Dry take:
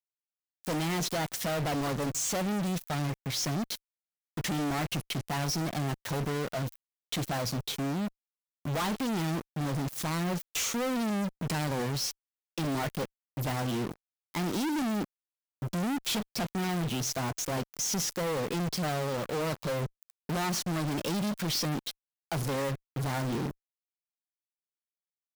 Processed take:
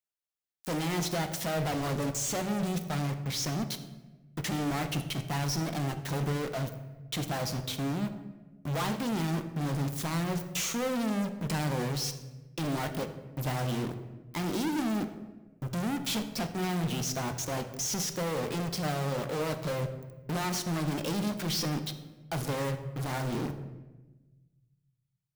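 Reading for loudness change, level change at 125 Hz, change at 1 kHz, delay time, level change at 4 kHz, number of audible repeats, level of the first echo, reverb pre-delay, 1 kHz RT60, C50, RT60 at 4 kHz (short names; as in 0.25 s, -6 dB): -0.5 dB, +1.0 dB, -1.0 dB, none, -1.0 dB, none, none, 13 ms, 1.0 s, 10.0 dB, 0.80 s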